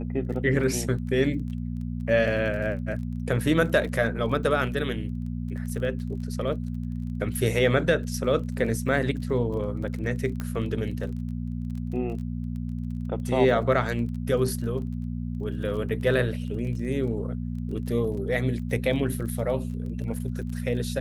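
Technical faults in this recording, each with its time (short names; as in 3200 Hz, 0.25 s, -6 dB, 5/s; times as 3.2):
crackle 21/s -36 dBFS
hum 60 Hz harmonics 4 -31 dBFS
10.4 pop -18 dBFS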